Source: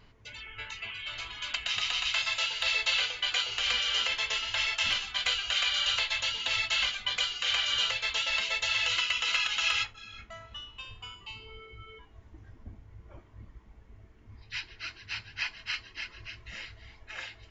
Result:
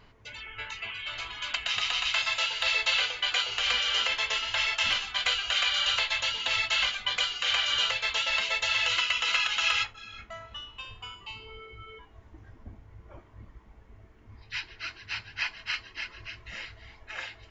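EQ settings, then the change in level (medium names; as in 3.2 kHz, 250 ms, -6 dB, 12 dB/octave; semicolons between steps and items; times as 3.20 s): peaking EQ 890 Hz +4.5 dB 2.8 oct; 0.0 dB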